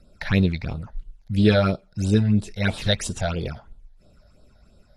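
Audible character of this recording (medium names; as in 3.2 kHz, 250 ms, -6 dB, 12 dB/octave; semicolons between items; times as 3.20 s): phasing stages 8, 3 Hz, lowest notch 320–2100 Hz; AAC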